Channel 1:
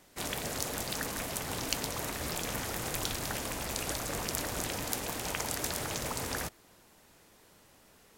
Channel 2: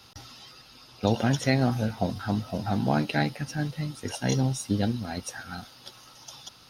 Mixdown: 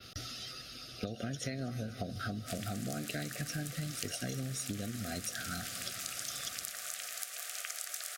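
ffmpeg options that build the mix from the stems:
-filter_complex "[0:a]highpass=f=800:w=0.5412,highpass=f=800:w=1.3066,adelay=2300,volume=-4dB[a];[1:a]acompressor=threshold=-30dB:ratio=4,volume=2.5dB,asplit=2[b][c];[c]volume=-18.5dB,aecho=0:1:242|484|726|968|1210|1452|1694|1936|2178|2420:1|0.6|0.36|0.216|0.13|0.0778|0.0467|0.028|0.0168|0.0101[d];[a][b][d]amix=inputs=3:normalize=0,adynamicequalizer=threshold=0.00224:dfrequency=8300:dqfactor=0.81:tfrequency=8300:tqfactor=0.81:attack=5:release=100:ratio=0.375:range=2:mode=boostabove:tftype=bell,asuperstop=centerf=930:order=12:qfactor=2.3,acompressor=threshold=-35dB:ratio=6"

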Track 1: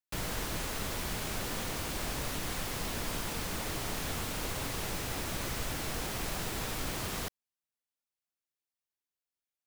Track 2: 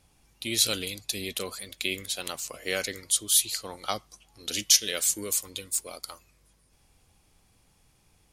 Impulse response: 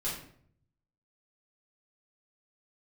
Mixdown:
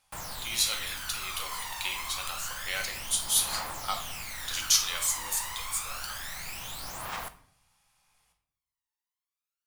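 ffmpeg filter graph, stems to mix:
-filter_complex "[0:a]aphaser=in_gain=1:out_gain=1:delay=1.1:decay=0.68:speed=0.28:type=triangular,volume=-4.5dB,asplit=2[a][b];[b]volume=-13.5dB[c];[1:a]volume=-7.5dB,asplit=2[d][e];[e]volume=-3dB[f];[2:a]atrim=start_sample=2205[g];[c][f]amix=inputs=2:normalize=0[h];[h][g]afir=irnorm=-1:irlink=0[i];[a][d][i]amix=inputs=3:normalize=0,lowshelf=f=580:t=q:w=1.5:g=-14"

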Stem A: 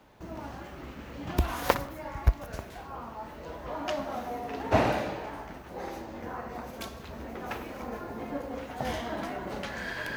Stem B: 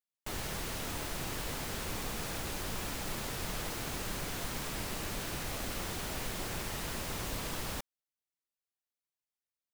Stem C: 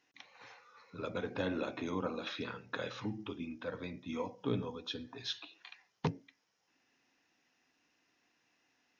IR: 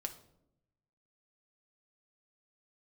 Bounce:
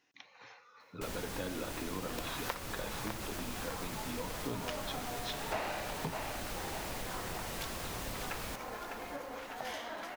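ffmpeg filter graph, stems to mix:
-filter_complex "[0:a]highpass=f=1.1k:p=1,dynaudnorm=f=380:g=9:m=6dB,adelay=800,volume=-4.5dB,asplit=2[a][b];[b]volume=-9dB[c];[1:a]adelay=750,volume=-1.5dB,asplit=2[d][e];[e]volume=-14dB[f];[2:a]volume=0.5dB[g];[c][f]amix=inputs=2:normalize=0,aecho=0:1:603|1206|1809|2412|3015|3618|4221:1|0.47|0.221|0.104|0.0488|0.0229|0.0108[h];[a][d][g][h]amix=inputs=4:normalize=0,acompressor=threshold=-37dB:ratio=2.5"

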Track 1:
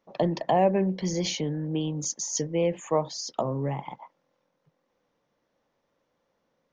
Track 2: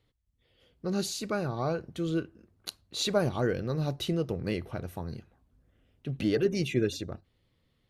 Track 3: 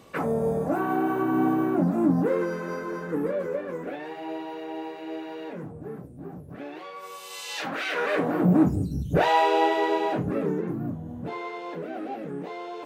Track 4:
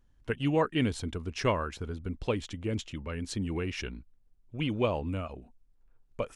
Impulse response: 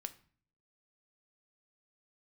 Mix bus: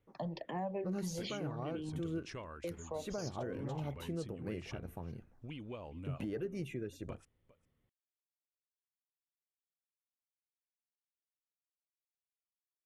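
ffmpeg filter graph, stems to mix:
-filter_complex "[0:a]asplit=2[a][b];[b]afreqshift=-2.3[c];[a][c]amix=inputs=2:normalize=1,volume=-7dB,asplit=3[d][e][f];[d]atrim=end=2.01,asetpts=PTS-STARTPTS,afade=t=out:st=2.006:d=0.004:c=hsin[g];[e]atrim=start=2.01:end=2.64,asetpts=PTS-STARTPTS,volume=0[h];[f]atrim=start=2.64,asetpts=PTS-STARTPTS,afade=t=in:d=0.004:c=hsin[i];[g][h][i]concat=n=3:v=0:a=1[j];[1:a]equalizer=f=4.4k:t=o:w=1.1:g=-14,volume=-6dB[k];[3:a]acompressor=threshold=-40dB:ratio=4,adelay=900,volume=-5dB,asplit=2[l][m];[m]volume=-21dB,aecho=0:1:404:1[n];[j][k][l][n]amix=inputs=4:normalize=0,alimiter=level_in=6.5dB:limit=-24dB:level=0:latency=1:release=249,volume=-6.5dB"

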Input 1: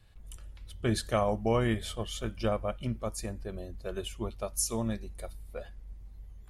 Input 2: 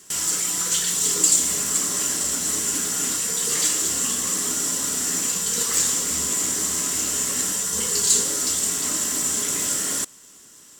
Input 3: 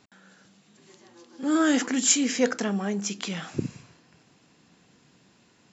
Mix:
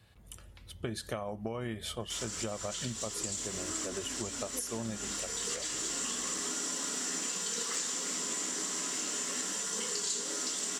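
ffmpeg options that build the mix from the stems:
-filter_complex "[0:a]highpass=96,acompressor=threshold=-30dB:ratio=4,volume=3dB,asplit=2[a][b];[1:a]acrossover=split=180 7500:gain=0.0708 1 0.0891[c][d][e];[c][d][e]amix=inputs=3:normalize=0,adelay=2000,volume=1.5dB[f];[2:a]adelay=2150,volume=-20dB[g];[b]apad=whole_len=564477[h];[f][h]sidechaincompress=threshold=-44dB:ratio=3:attack=20:release=408[i];[a][i][g]amix=inputs=3:normalize=0,acompressor=threshold=-34dB:ratio=4"

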